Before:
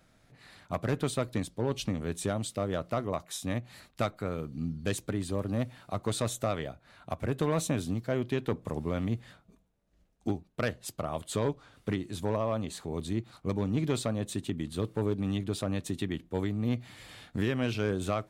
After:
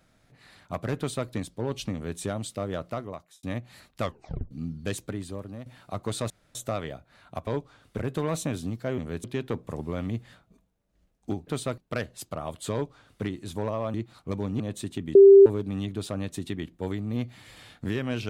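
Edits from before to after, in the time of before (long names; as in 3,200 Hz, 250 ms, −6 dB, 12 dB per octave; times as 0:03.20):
0:00.98–0:01.29: duplicate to 0:10.45
0:01.93–0:02.19: duplicate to 0:08.22
0:02.84–0:03.43: fade out
0:04.01: tape stop 0.50 s
0:05.01–0:05.66: fade out, to −13 dB
0:06.30: splice in room tone 0.25 s
0:11.39–0:11.90: duplicate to 0:07.22
0:12.61–0:13.12: remove
0:13.78–0:14.12: remove
0:14.67–0:14.98: beep over 394 Hz −8 dBFS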